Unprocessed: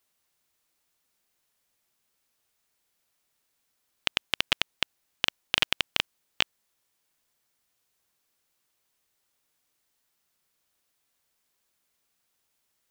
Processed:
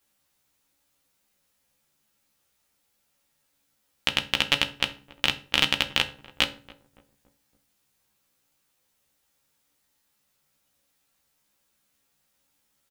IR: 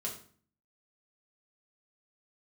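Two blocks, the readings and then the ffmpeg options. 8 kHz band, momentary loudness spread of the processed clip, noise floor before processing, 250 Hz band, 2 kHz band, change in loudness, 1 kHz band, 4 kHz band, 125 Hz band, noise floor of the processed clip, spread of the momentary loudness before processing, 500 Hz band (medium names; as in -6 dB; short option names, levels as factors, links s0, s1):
+3.5 dB, 7 LU, -77 dBFS, +8.0 dB, +3.5 dB, +3.5 dB, +4.0 dB, +3.5 dB, +7.5 dB, -73 dBFS, 7 LU, +4.5 dB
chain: -filter_complex "[0:a]asplit=2[s0][s1];[s1]adelay=14,volume=0.708[s2];[s0][s2]amix=inputs=2:normalize=0,asplit=2[s3][s4];[s4]adelay=282,lowpass=f=890:p=1,volume=0.133,asplit=2[s5][s6];[s6]adelay=282,lowpass=f=890:p=1,volume=0.52,asplit=2[s7][s8];[s8]adelay=282,lowpass=f=890:p=1,volume=0.52,asplit=2[s9][s10];[s10]adelay=282,lowpass=f=890:p=1,volume=0.52[s11];[s3][s5][s7][s9][s11]amix=inputs=5:normalize=0,asplit=2[s12][s13];[1:a]atrim=start_sample=2205,asetrate=57330,aresample=44100,lowshelf=f=190:g=10.5[s14];[s13][s14]afir=irnorm=-1:irlink=0,volume=0.841[s15];[s12][s15]amix=inputs=2:normalize=0,volume=0.794"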